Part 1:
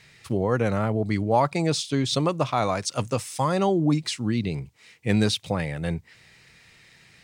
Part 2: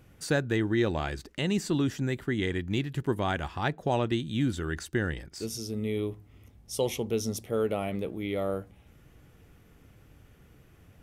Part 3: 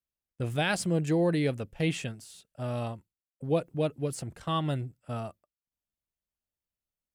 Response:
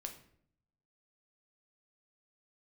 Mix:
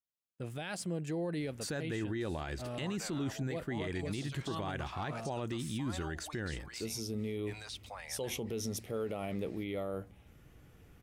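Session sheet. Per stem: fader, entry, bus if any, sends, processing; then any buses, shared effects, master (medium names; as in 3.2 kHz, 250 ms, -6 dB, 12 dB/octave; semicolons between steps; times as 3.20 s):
-11.0 dB, 2.40 s, no send, high-pass 710 Hz 24 dB/octave; peak limiter -24 dBFS, peak gain reduction 11 dB
-2.5 dB, 1.40 s, no send, none
-7.0 dB, 0.00 s, no send, high-pass 120 Hz 12 dB/octave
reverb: none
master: peak limiter -28.5 dBFS, peak gain reduction 11.5 dB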